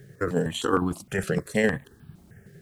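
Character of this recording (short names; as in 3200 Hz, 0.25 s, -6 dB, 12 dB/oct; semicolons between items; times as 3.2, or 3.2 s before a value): tremolo saw down 11 Hz, depth 55%; a quantiser's noise floor 12-bit, dither none; notches that jump at a steady rate 6.5 Hz 260–1900 Hz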